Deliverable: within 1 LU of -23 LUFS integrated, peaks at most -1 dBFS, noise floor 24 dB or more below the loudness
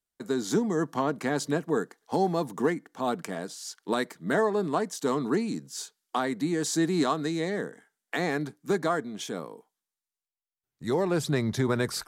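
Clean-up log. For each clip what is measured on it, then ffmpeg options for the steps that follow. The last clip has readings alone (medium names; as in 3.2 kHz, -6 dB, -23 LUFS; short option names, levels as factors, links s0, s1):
loudness -29.0 LUFS; peak level -14.0 dBFS; loudness target -23.0 LUFS
-> -af "volume=2"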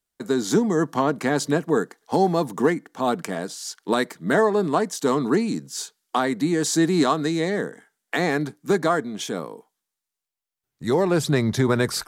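loudness -23.0 LUFS; peak level -8.0 dBFS; noise floor -85 dBFS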